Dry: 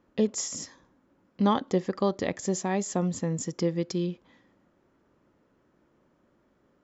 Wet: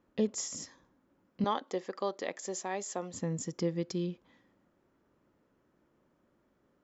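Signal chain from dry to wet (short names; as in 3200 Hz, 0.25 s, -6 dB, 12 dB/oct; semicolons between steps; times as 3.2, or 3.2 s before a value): 1.44–3.14 HPF 410 Hz 12 dB/oct; gain -5 dB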